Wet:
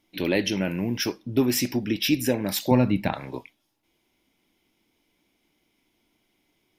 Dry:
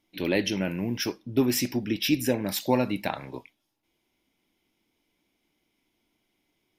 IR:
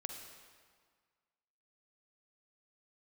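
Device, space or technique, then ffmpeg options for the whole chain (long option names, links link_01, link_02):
parallel compression: -filter_complex "[0:a]asettb=1/sr,asplit=3[link_01][link_02][link_03];[link_01]atrim=end=2.714[link_04];[link_02]atrim=start=2.71:end=3.13,asetpts=PTS-STARTPTS,afade=type=in:duration=0.004:curve=qsin,afade=type=out:start_time=0.416:duration=0.004:curve=qsin,bass=frequency=250:gain=10,treble=frequency=4000:gain=-8[link_05];[link_03]atrim=start=3.126[link_06];[link_04][link_05]acrossfade=duration=0.004:curve1=hsin:curve2=qsin[link_07];[link_07][link_06]acrossfade=duration=0.004:curve1=qsin:curve2=hsin,asplit=2[link_08][link_09];[link_09]acompressor=threshold=-31dB:ratio=6,volume=-4dB[link_10];[link_08][link_10]amix=inputs=2:normalize=0"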